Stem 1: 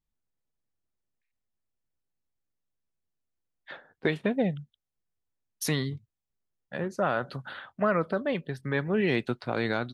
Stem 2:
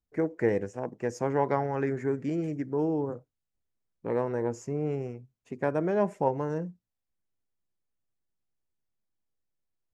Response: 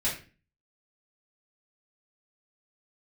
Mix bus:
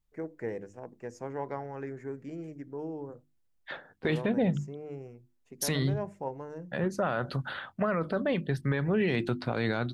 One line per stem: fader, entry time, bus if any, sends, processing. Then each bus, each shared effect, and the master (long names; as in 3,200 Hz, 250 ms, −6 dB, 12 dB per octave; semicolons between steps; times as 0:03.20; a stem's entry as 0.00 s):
+3.0 dB, 0.00 s, no send, low-shelf EQ 130 Hz +8 dB
−9.5 dB, 0.00 s, no send, no processing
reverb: not used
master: mains-hum notches 50/100/150/200/250/300/350 Hz; brickwall limiter −18.5 dBFS, peak gain reduction 9 dB